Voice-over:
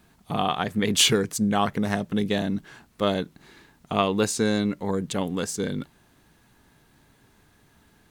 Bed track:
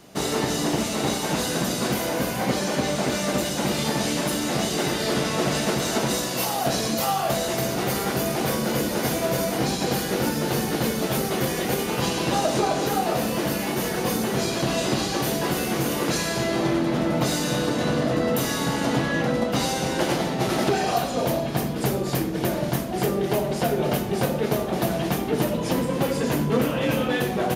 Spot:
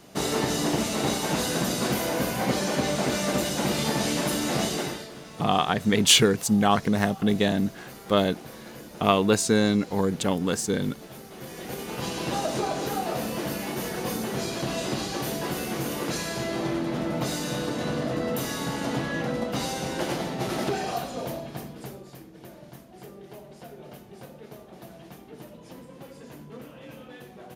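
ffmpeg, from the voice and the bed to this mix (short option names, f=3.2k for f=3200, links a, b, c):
-filter_complex "[0:a]adelay=5100,volume=2dB[a];[1:a]volume=12dB,afade=t=out:st=4.64:d=0.45:silence=0.133352,afade=t=in:st=11.33:d=0.93:silence=0.211349,afade=t=out:st=20.67:d=1.46:silence=0.16788[b];[a][b]amix=inputs=2:normalize=0"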